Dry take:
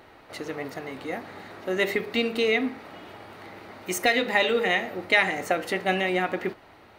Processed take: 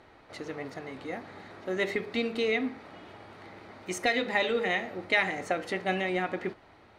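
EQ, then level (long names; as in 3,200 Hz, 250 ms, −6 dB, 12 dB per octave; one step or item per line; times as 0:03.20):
low-pass filter 8,400 Hz 12 dB per octave
low-shelf EQ 180 Hz +3.5 dB
notch filter 2,800 Hz, Q 24
−5.0 dB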